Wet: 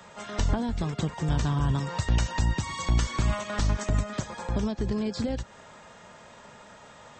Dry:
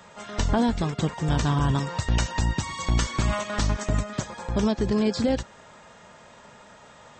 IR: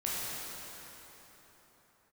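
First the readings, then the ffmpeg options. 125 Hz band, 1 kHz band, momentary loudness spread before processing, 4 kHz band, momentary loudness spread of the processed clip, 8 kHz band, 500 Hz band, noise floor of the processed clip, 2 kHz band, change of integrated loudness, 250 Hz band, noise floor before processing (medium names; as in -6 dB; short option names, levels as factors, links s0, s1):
-1.5 dB, -4.0 dB, 7 LU, -4.0 dB, 6 LU, -3.5 dB, -6.0 dB, -50 dBFS, -3.5 dB, -3.0 dB, -5.0 dB, -50 dBFS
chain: -filter_complex "[0:a]acrossover=split=140[s0][s1];[s1]acompressor=threshold=0.0355:ratio=4[s2];[s0][s2]amix=inputs=2:normalize=0"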